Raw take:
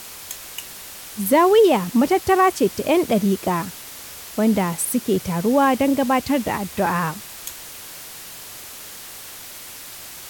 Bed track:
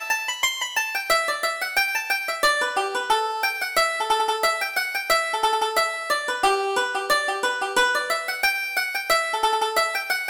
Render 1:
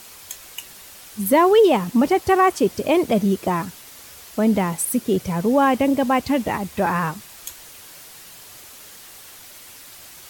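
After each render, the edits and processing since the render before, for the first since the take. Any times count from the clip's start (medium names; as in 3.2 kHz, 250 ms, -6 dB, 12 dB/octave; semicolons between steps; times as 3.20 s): noise reduction 6 dB, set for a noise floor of -38 dBFS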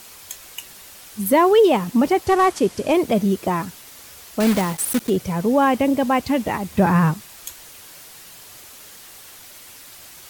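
2.26–2.93 s: CVSD coder 64 kbps; 4.40–5.11 s: block-companded coder 3-bit; 6.70–7.14 s: peaking EQ 140 Hz +11 dB 2.1 oct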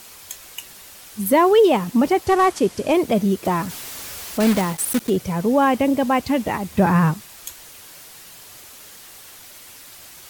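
3.45–4.53 s: jump at every zero crossing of -31.5 dBFS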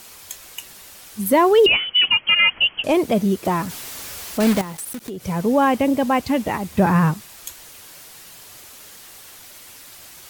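1.66–2.84 s: frequency inversion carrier 3.2 kHz; 4.61–5.24 s: compression, threshold -28 dBFS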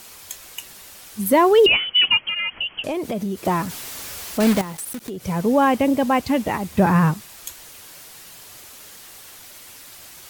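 2.20–3.38 s: compression, threshold -22 dBFS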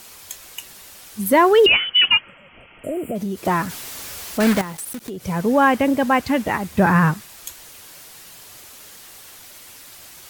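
2.28–3.13 s: spectral replace 740–7100 Hz before; dynamic bell 1.6 kHz, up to +7 dB, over -37 dBFS, Q 1.7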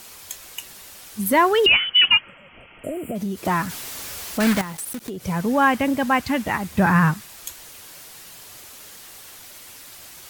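dynamic bell 450 Hz, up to -6 dB, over -30 dBFS, Q 0.99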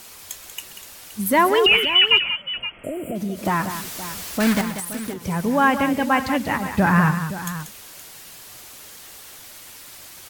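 multi-tap echo 131/188/521 ms -17.5/-10/-13.5 dB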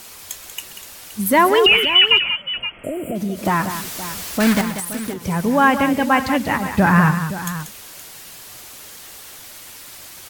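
trim +3 dB; peak limiter -3 dBFS, peak gain reduction 2 dB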